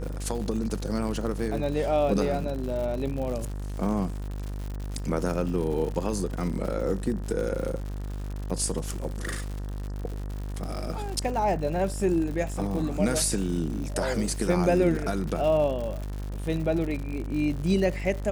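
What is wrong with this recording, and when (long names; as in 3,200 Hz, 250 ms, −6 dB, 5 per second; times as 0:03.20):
mains buzz 50 Hz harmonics 38 −33 dBFS
surface crackle 130 per second −33 dBFS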